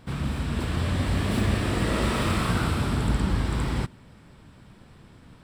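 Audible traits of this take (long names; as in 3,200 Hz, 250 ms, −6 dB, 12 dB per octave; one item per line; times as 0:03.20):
background noise floor −52 dBFS
spectral slope −5.5 dB per octave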